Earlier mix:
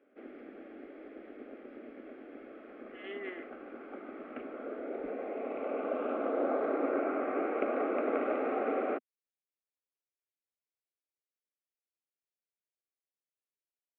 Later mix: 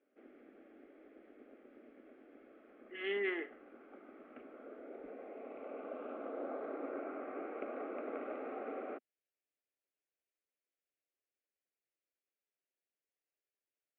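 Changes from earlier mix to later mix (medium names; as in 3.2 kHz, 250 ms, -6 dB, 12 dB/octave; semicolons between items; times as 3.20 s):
speech +6.5 dB; background -11.0 dB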